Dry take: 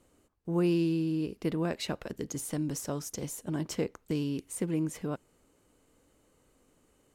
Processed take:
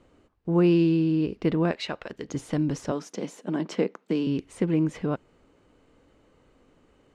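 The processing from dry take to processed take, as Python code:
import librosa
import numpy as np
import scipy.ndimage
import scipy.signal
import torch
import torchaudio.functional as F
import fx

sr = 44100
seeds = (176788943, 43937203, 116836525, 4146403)

y = scipy.signal.sosfilt(scipy.signal.butter(2, 3600.0, 'lowpass', fs=sr, output='sos'), x)
y = fx.low_shelf(y, sr, hz=430.0, db=-12.0, at=(1.71, 2.29))
y = fx.cheby1_highpass(y, sr, hz=180.0, order=4, at=(2.91, 4.27))
y = y * 10.0 ** (7.0 / 20.0)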